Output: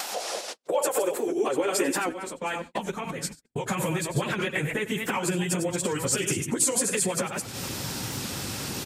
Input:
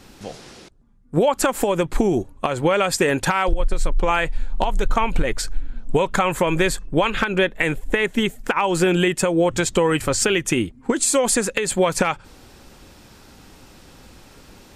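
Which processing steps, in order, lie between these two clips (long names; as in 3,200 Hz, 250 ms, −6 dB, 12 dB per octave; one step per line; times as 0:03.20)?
delay that plays each chunk backwards 221 ms, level −8 dB
upward compression, threshold −19 dBFS
dynamic equaliser 4,000 Hz, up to −4 dB, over −38 dBFS, Q 0.77
hum removal 164.5 Hz, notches 5
time stretch by phase vocoder 0.6×
on a send: single-tap delay 95 ms −16 dB
on the sum: downward compressor 12 to 1, threshold −26 dBFS, peak gain reduction 12.5 dB
high-pass filter sweep 730 Hz → 120 Hz, 0:00.04–0:03.76
noise gate −39 dBFS, range −40 dB
high-shelf EQ 3,000 Hz +10 dB
wow of a warped record 78 rpm, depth 100 cents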